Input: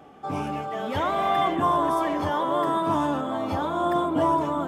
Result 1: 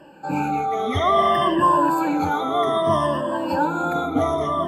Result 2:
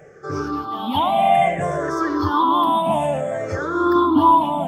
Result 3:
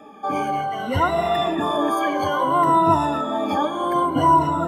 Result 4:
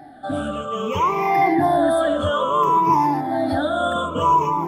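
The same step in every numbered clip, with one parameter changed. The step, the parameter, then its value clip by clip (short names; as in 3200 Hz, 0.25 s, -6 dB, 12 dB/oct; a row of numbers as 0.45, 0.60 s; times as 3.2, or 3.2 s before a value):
moving spectral ripple, ripples per octave: 1.3, 0.53, 2, 0.78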